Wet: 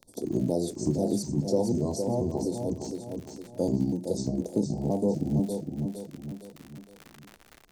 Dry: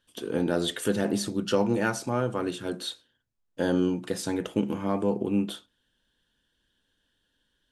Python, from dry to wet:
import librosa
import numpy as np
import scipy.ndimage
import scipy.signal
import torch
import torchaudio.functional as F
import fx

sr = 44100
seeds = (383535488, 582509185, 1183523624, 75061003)

p1 = fx.pitch_trill(x, sr, semitones=-5.5, every_ms=245)
p2 = scipy.signal.sosfilt(scipy.signal.cheby2(4, 40, [1200.0, 3100.0], 'bandstop', fs=sr, output='sos'), p1)
p3 = fx.dmg_crackle(p2, sr, seeds[0], per_s=59.0, level_db=-40.0)
p4 = p3 + fx.echo_feedback(p3, sr, ms=461, feedback_pct=31, wet_db=-8.0, dry=0)
y = fx.band_squash(p4, sr, depth_pct=40)